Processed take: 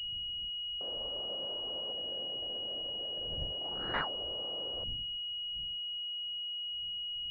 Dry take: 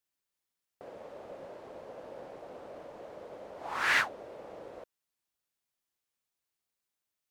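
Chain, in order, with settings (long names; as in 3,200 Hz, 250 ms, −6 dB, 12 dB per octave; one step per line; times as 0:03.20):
0:01.92–0:03.94: running median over 41 samples
wind on the microphone 89 Hz −54 dBFS
switching amplifier with a slow clock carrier 2,900 Hz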